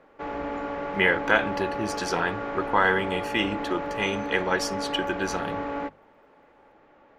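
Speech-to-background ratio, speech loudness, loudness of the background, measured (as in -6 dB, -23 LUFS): 5.5 dB, -26.5 LUFS, -32.0 LUFS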